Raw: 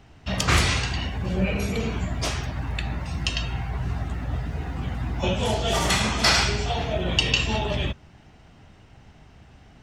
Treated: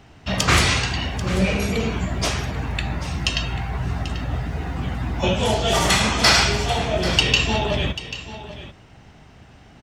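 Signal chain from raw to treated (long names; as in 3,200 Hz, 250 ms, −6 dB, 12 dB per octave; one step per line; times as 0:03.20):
low-shelf EQ 75 Hz −6.5 dB
in parallel at −9 dB: gain into a clipping stage and back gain 15.5 dB
on the sum: single-tap delay 789 ms −14 dB
level +2 dB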